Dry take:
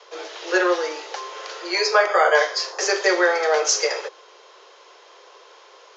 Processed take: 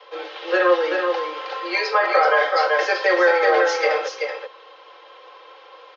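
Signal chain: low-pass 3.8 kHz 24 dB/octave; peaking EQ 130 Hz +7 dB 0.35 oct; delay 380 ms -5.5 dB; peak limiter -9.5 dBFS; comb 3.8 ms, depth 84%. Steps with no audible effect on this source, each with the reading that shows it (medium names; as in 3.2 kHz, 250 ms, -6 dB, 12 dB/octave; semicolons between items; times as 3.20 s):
peaking EQ 130 Hz: input has nothing below 300 Hz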